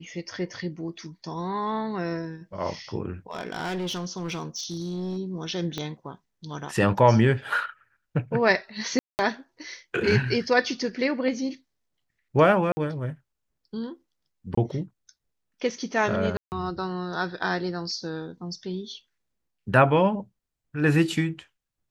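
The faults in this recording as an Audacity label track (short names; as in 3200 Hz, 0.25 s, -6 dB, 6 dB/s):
3.310000	5.180000	clipped -26.5 dBFS
5.780000	5.780000	pop -16 dBFS
8.990000	9.190000	gap 0.199 s
12.720000	12.770000	gap 50 ms
14.550000	14.570000	gap 24 ms
16.370000	16.520000	gap 0.149 s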